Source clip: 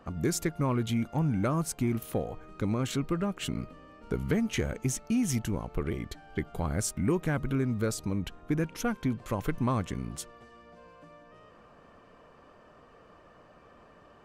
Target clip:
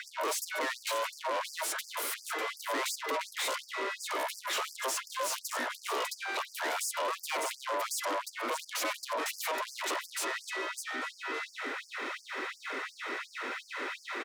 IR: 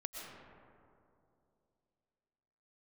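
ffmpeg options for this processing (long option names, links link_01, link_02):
-filter_complex "[0:a]highshelf=frequency=7200:gain=10,asplit=2[link_01][link_02];[link_02]alimiter=limit=-23.5dB:level=0:latency=1,volume=2dB[link_03];[link_01][link_03]amix=inputs=2:normalize=0,aecho=1:1:599:0.119,asplit=2[link_04][link_05];[link_05]highpass=frequency=720:poles=1,volume=34dB,asoftclip=type=tanh:threshold=-11dB[link_06];[link_04][link_06]amix=inputs=2:normalize=0,lowpass=frequency=3700:poles=1,volume=-6dB,asoftclip=type=tanh:threshold=-22.5dB,aeval=exprs='val(0)*sin(2*PI*790*n/s)':channel_layout=same,afftfilt=real='re*gte(b*sr/1024,220*pow(4700/220,0.5+0.5*sin(2*PI*2.8*pts/sr)))':imag='im*gte(b*sr/1024,220*pow(4700/220,0.5+0.5*sin(2*PI*2.8*pts/sr)))':win_size=1024:overlap=0.75,volume=-4.5dB"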